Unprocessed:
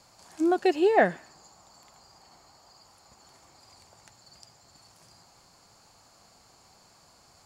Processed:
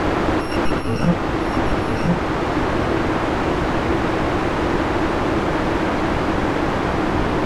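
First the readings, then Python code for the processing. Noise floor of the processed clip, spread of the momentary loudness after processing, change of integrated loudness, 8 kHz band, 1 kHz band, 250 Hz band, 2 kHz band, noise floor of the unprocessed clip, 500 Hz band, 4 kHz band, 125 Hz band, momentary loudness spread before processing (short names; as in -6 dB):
-22 dBFS, 1 LU, +4.0 dB, +12.0 dB, +13.0 dB, +14.0 dB, +13.0 dB, -59 dBFS, +9.0 dB, +16.5 dB, +28.0 dB, 5 LU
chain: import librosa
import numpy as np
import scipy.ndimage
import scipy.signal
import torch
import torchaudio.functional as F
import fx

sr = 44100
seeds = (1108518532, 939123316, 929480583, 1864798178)

y = fx.bit_reversed(x, sr, seeds[0], block=128)
y = scipy.signal.sosfilt(scipy.signal.butter(2, 170.0, 'highpass', fs=sr, output='sos'), y)
y = fx.quant_dither(y, sr, seeds[1], bits=6, dither='triangular')
y = fx.low_shelf(y, sr, hz=220.0, db=10.5)
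y = fx.leveller(y, sr, passes=5)
y = scipy.signal.sosfilt(scipy.signal.butter(2, 1100.0, 'lowpass', fs=sr, output='sos'), y)
y = y + 10.0 ** (-4.0 / 20.0) * np.pad(y, (int(1010 * sr / 1000.0), 0))[:len(y)]
y = fx.rider(y, sr, range_db=10, speed_s=0.5)
y = fx.peak_eq(y, sr, hz=320.0, db=9.5, octaves=0.36)
y = y * 10.0 ** (7.0 / 20.0)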